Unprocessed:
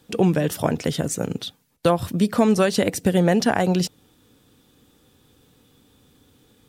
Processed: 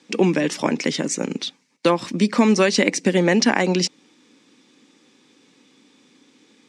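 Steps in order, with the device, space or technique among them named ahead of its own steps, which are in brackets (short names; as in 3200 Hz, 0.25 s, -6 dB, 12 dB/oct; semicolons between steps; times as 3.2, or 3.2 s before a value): television speaker (speaker cabinet 220–7300 Hz, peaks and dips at 460 Hz -6 dB, 690 Hz -10 dB, 1400 Hz -6 dB, 2200 Hz +7 dB, 3300 Hz -4 dB, 5500 Hz +3 dB); gain +5.5 dB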